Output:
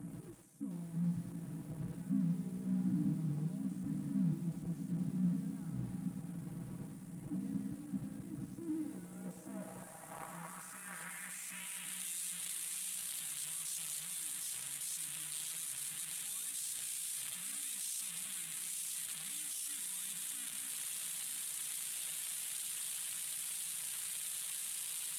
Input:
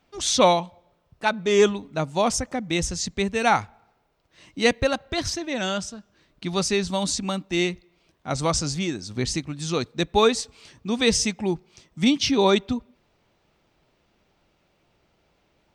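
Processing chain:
linear delta modulator 64 kbit/s, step −17 dBFS
parametric band 430 Hz −11.5 dB 2.9 octaves
in parallel at −0.5 dB: brickwall limiter −20 dBFS, peak gain reduction 10.5 dB
on the sum: drawn EQ curve 220 Hz 0 dB, 490 Hz −23 dB, 1,800 Hz −15 dB, 4,200 Hz −30 dB, 9,100 Hz +14 dB
soft clipping −14 dBFS, distortion −12 dB
high-pass filter 79 Hz 12 dB per octave
output level in coarse steps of 15 dB
feedback delay with all-pass diffusion 534 ms, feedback 48%, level −8 dB
time stretch by overlap-add 1.6×, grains 33 ms
band-pass filter sweep 250 Hz → 3,600 Hz, 0:08.55–0:12.08
feedback echo at a low word length 98 ms, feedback 35%, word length 10 bits, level −9 dB
level +5 dB

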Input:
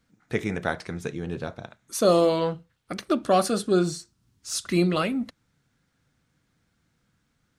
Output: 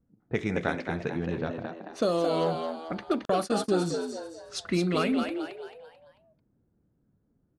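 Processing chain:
downward compressor 16 to 1, threshold −22 dBFS, peak gain reduction 9 dB
low-pass that shuts in the quiet parts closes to 500 Hz, open at −22.5 dBFS
echo with shifted repeats 220 ms, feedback 41%, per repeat +79 Hz, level −6 dB
0:03.25–0:03.75: noise gate −29 dBFS, range −49 dB

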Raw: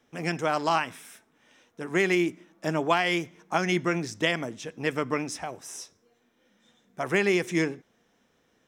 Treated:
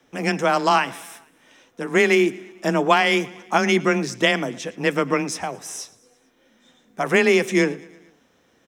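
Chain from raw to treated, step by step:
repeating echo 113 ms, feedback 59%, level −22.5 dB
frequency shifter +19 Hz
level +7 dB

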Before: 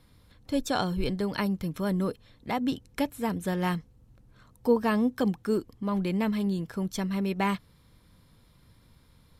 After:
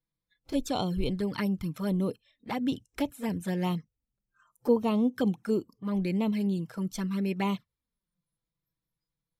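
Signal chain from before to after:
noise reduction from a noise print of the clip's start 27 dB
flanger swept by the level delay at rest 6.1 ms, full sweep at −23.5 dBFS

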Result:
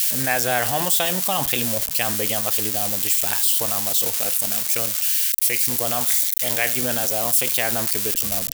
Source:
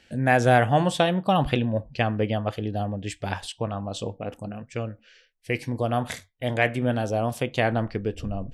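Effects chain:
spike at every zero crossing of −20.5 dBFS
spectral tilt +3.5 dB per octave
in parallel at +0.5 dB: compressor whose output falls as the input rises −26 dBFS, ratio −1
on the sum: level −4.5 dB

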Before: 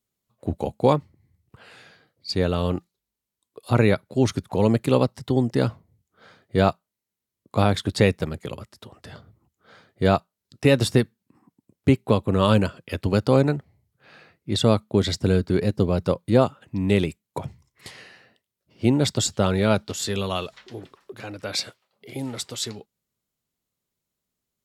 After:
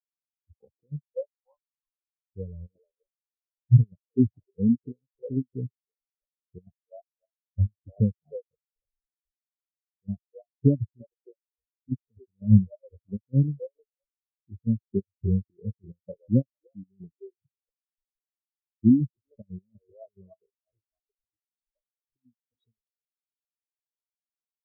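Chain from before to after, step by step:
on a send: echo through a band-pass that steps 309 ms, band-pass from 550 Hz, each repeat 0.7 octaves, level −4 dB
on the sum: treble cut that deepens with the level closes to 430 Hz, closed at −15 dBFS
pitch vibrato 3 Hz 69 cents
in parallel at −11.5 dB: comparator with hysteresis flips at −30.5 dBFS
on the sum: gate pattern "xx.x..xxxx." 180 BPM −12 dB
every bin expanded away from the loudest bin 4 to 1

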